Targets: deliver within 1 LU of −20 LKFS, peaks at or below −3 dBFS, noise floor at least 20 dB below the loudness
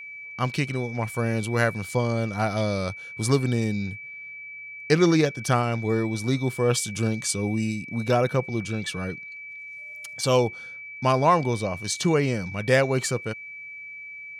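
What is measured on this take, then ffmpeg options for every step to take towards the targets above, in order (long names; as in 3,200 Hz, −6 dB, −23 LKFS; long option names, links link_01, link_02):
interfering tone 2,300 Hz; level of the tone −37 dBFS; integrated loudness −25.0 LKFS; sample peak −7.0 dBFS; target loudness −20.0 LKFS
→ -af "bandreject=frequency=2300:width=30"
-af "volume=5dB,alimiter=limit=-3dB:level=0:latency=1"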